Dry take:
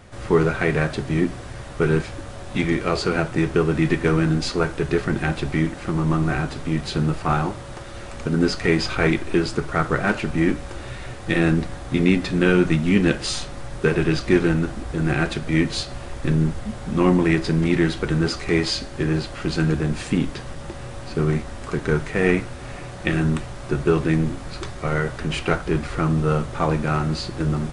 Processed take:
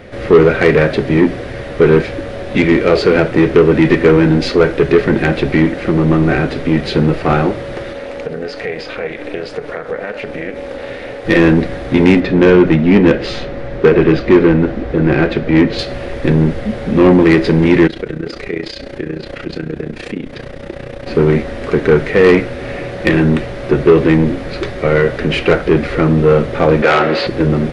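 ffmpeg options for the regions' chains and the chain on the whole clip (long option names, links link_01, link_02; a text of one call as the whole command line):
ffmpeg -i in.wav -filter_complex "[0:a]asettb=1/sr,asplit=3[link_01][link_02][link_03];[link_01]atrim=end=7.934[link_04];[link_02]atrim=start=7.93:end=11.25,asetpts=PTS-STARTPTS,afade=type=in:duration=0.004:curve=qsin,afade=type=out:start_time=3.316:duration=0.004:curve=qsin,lowshelf=frequency=400:width_type=q:width=3:gain=-6,acompressor=threshold=-29dB:ratio=5:attack=3.2:release=140:knee=1:detection=peak,tremolo=f=300:d=0.824[link_05];[link_03]atrim=start=11.246[link_06];[link_04][link_05]acrossfade=duration=0.004:curve1=hsin:curve2=qsin[link_07];[link_07][link_06]acrossfade=duration=0.004:curve1=qsin:curve2=hsin,asettb=1/sr,asplit=3[link_08][link_09][link_10];[link_08]atrim=end=12.204[link_11];[link_09]atrim=start=12.2:end=15.79,asetpts=PTS-STARTPTS,afade=type=in:duration=0.004:curve=qsin,afade=type=out:start_time=3.586:duration=0.004:curve=qsin,lowpass=6800,highshelf=frequency=2900:gain=-8.5[link_12];[link_10]atrim=start=15.786[link_13];[link_11][link_12]acrossfade=duration=0.004:curve1=hsin:curve2=qsin[link_14];[link_14][link_13]acrossfade=duration=0.004:curve1=qsin:curve2=hsin,asettb=1/sr,asplit=3[link_15][link_16][link_17];[link_15]atrim=end=17.874[link_18];[link_16]atrim=start=17.87:end=21.07,asetpts=PTS-STARTPTS,afade=type=in:duration=0.004:curve=qsin,afade=type=out:start_time=3.196:duration=0.004:curve=qsin,acompressor=threshold=-30dB:ratio=3:attack=3.2:release=140:knee=1:detection=peak,tremolo=f=30:d=0.824[link_19];[link_17]atrim=start=21.066[link_20];[link_18][link_19]acrossfade=duration=0.004:curve1=hsin:curve2=qsin[link_21];[link_21][link_20]acrossfade=duration=0.004:curve1=qsin:curve2=hsin,asettb=1/sr,asplit=3[link_22][link_23][link_24];[link_22]atrim=end=26.824[link_25];[link_23]atrim=start=26.82:end=27.27,asetpts=PTS-STARTPTS,afade=type=in:duration=0.004:curve=qsin,afade=type=out:start_time=0.446:duration=0.004:curve=qsin,acrossover=split=420 3700:gain=0.178 1 0.126[link_26][link_27][link_28];[link_26][link_27][link_28]amix=inputs=3:normalize=0,aeval=exprs='0.237*sin(PI/2*2*val(0)/0.237)':channel_layout=same,highpass=frequency=190:poles=1[link_29];[link_24]atrim=start=27.266[link_30];[link_25][link_29]acrossfade=duration=0.004:curve1=hsin:curve2=qsin[link_31];[link_31][link_30]acrossfade=duration=0.004:curve1=qsin:curve2=hsin,equalizer=frequency=250:width_type=o:width=1:gain=5,equalizer=frequency=500:width_type=o:width=1:gain=12,equalizer=frequency=1000:width_type=o:width=1:gain=-5,equalizer=frequency=2000:width_type=o:width=1:gain=8,equalizer=frequency=4000:width_type=o:width=1:gain=3,equalizer=frequency=8000:width_type=o:width=1:gain=-11,acontrast=68,volume=-1dB" out.wav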